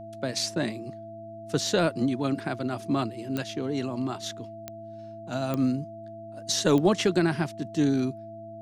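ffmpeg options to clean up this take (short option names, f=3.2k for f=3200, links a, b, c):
-af "adeclick=t=4,bandreject=f=108.4:t=h:w=4,bandreject=f=216.8:t=h:w=4,bandreject=f=325.2:t=h:w=4,bandreject=f=670:w=30"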